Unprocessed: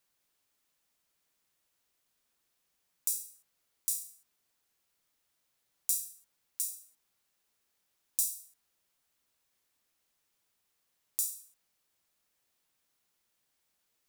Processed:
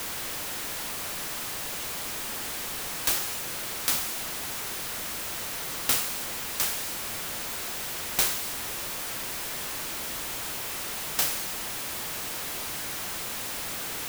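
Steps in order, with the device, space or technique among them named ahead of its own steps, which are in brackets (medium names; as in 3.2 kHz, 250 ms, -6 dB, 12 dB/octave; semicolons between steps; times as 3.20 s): early CD player with a faulty converter (jump at every zero crossing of -32 dBFS; sampling jitter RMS 0.055 ms); trim +6 dB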